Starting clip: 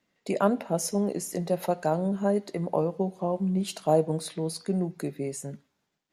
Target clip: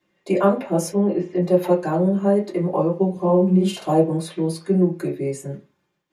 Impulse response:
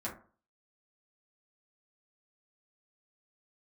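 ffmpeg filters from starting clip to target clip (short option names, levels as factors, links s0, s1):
-filter_complex "[0:a]asplit=3[s0][s1][s2];[s0]afade=t=out:st=0.91:d=0.02[s3];[s1]lowpass=f=3500:w=0.5412,lowpass=f=3500:w=1.3066,afade=t=in:st=0.91:d=0.02,afade=t=out:st=1.41:d=0.02[s4];[s2]afade=t=in:st=1.41:d=0.02[s5];[s3][s4][s5]amix=inputs=3:normalize=0,asettb=1/sr,asplit=3[s6][s7][s8];[s6]atrim=end=3.094[s9];[s7]atrim=start=3.09:end=3.92,asetpts=PTS-STARTPTS,afade=t=in:d=0.004:c=qsin,afade=t=out:st=0.826:d=0.004:c=qsin,asplit=2[s10][s11];[s11]adelay=50,volume=0.668[s12];[s10][s12]amix=inputs=2:normalize=0,atrim=end_sample=36603[s13];[s8]atrim=start=3.916[s14];[s9][s13]acrossfade=d=0.004:c1=hsin:c2=qsin[s15];[s15][s14]acrossfade=d=0.004:c1=qsin:c2=hsin[s16];[1:a]atrim=start_sample=2205,asetrate=70560,aresample=44100[s17];[s16][s17]afir=irnorm=-1:irlink=0,volume=2.24"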